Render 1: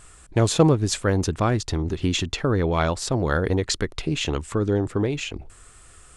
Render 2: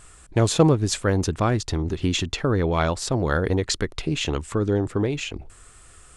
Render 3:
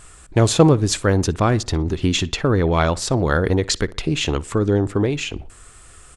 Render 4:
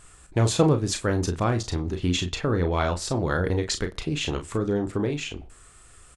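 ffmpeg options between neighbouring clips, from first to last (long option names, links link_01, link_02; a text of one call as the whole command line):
ffmpeg -i in.wav -af anull out.wav
ffmpeg -i in.wav -filter_complex "[0:a]asplit=2[link_01][link_02];[link_02]adelay=60,lowpass=frequency=3700:poles=1,volume=-21dB,asplit=2[link_03][link_04];[link_04]adelay=60,lowpass=frequency=3700:poles=1,volume=0.39,asplit=2[link_05][link_06];[link_06]adelay=60,lowpass=frequency=3700:poles=1,volume=0.39[link_07];[link_01][link_03][link_05][link_07]amix=inputs=4:normalize=0,volume=4dB" out.wav
ffmpeg -i in.wav -af "aecho=1:1:34|45:0.398|0.188,volume=-7dB" out.wav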